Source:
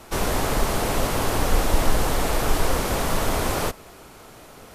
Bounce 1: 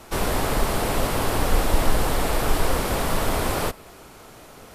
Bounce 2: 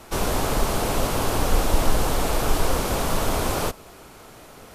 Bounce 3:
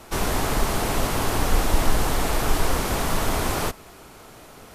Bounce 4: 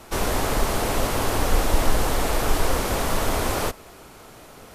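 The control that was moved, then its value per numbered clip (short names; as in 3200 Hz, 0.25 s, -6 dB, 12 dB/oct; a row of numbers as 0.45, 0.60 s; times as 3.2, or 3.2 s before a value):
dynamic EQ, frequency: 6300, 1900, 530, 160 Hz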